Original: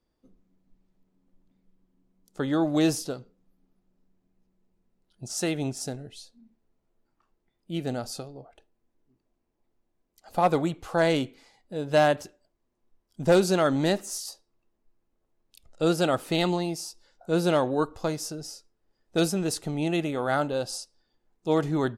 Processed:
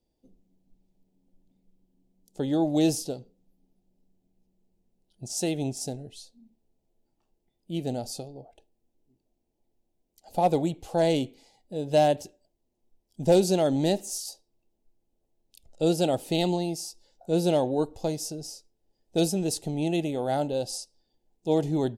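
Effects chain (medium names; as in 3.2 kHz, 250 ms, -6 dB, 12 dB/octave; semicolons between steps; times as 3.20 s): FFT filter 830 Hz 0 dB, 1.2 kHz -18 dB, 2.9 kHz -2 dB, 4.2 kHz -1 dB, 7.4 kHz +1 dB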